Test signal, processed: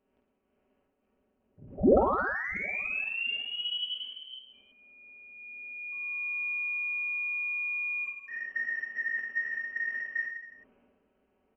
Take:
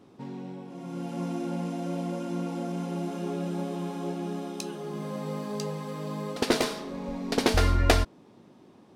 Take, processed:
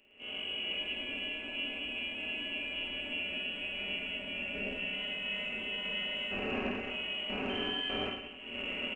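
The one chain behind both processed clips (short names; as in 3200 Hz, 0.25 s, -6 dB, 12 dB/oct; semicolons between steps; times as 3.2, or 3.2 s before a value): stepped spectrum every 0.2 s; recorder AGC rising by 65 dB/s; in parallel at -10.5 dB: overloaded stage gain 25.5 dB; on the sum: low shelf 370 Hz -11.5 dB; comb 5.6 ms, depth 94%; inverted band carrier 3100 Hz; transient shaper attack -8 dB, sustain +8 dB; graphic EQ 125/250/500/1000/2000 Hz -3/+9/+6/-5/-12 dB; on a send: reverse bouncing-ball echo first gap 50 ms, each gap 1.2×, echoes 5; on the sum: gain -5 dB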